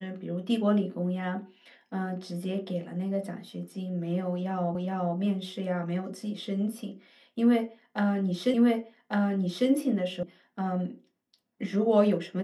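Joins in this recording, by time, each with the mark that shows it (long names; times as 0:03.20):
0:04.75: the same again, the last 0.42 s
0:08.54: the same again, the last 1.15 s
0:10.23: cut off before it has died away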